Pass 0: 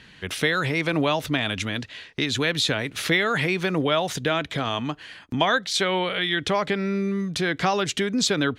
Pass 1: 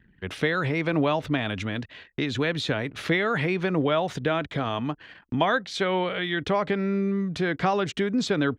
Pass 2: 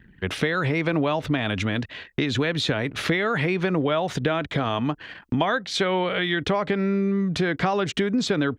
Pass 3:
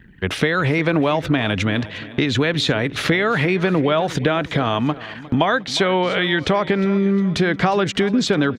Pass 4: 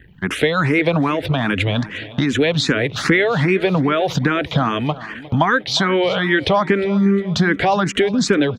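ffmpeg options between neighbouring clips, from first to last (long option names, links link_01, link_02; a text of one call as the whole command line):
ffmpeg -i in.wav -af "lowpass=frequency=1600:poles=1,anlmdn=0.0158" out.wav
ffmpeg -i in.wav -af "acompressor=threshold=-28dB:ratio=3,volume=7dB" out.wav
ffmpeg -i in.wav -af "aecho=1:1:357|714|1071|1428:0.133|0.064|0.0307|0.0147,volume=5dB" out.wav
ffmpeg -i in.wav -filter_complex "[0:a]asplit=2[link_01][link_02];[link_02]afreqshift=2.5[link_03];[link_01][link_03]amix=inputs=2:normalize=1,volume=4.5dB" out.wav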